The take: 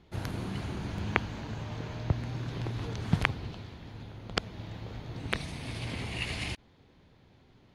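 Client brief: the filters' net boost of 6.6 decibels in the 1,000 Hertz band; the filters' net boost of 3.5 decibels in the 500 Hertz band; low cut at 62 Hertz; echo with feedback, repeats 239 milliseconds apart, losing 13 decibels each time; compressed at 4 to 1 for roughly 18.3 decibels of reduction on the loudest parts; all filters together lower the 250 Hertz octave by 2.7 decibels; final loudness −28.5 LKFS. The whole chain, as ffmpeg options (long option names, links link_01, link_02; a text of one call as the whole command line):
ffmpeg -i in.wav -af "highpass=62,equalizer=frequency=250:width_type=o:gain=-5.5,equalizer=frequency=500:width_type=o:gain=4,equalizer=frequency=1000:width_type=o:gain=7.5,acompressor=threshold=-42dB:ratio=4,aecho=1:1:239|478|717:0.224|0.0493|0.0108,volume=16.5dB" out.wav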